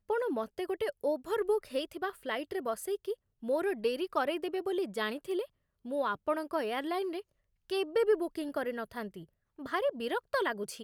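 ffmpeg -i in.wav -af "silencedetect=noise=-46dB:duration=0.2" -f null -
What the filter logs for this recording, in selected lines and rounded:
silence_start: 3.14
silence_end: 3.43 | silence_duration: 0.29
silence_start: 5.45
silence_end: 5.85 | silence_duration: 0.40
silence_start: 7.21
silence_end: 7.70 | silence_duration: 0.49
silence_start: 9.24
silence_end: 9.59 | silence_duration: 0.35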